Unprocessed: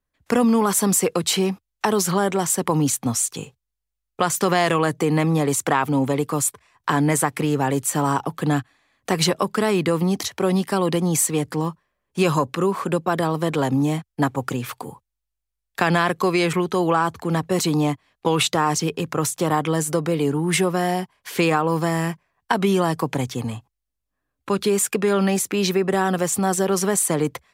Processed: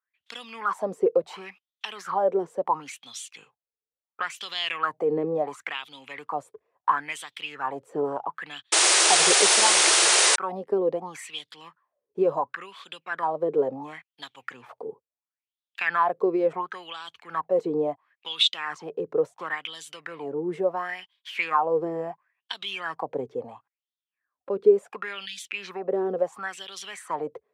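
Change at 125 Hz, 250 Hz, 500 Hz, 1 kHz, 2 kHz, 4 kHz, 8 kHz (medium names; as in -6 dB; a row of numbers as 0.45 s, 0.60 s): -23.0 dB, -14.0 dB, -4.0 dB, -4.5 dB, -1.5 dB, +3.0 dB, -0.5 dB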